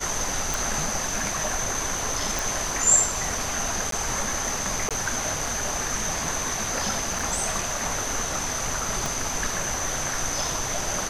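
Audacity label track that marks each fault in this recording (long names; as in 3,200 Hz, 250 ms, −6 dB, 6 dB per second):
0.540000	0.540000	click
2.390000	2.390000	click
3.910000	3.920000	drop-out 13 ms
4.890000	4.910000	drop-out 17 ms
7.190000	7.190000	drop-out 4.6 ms
9.060000	9.060000	click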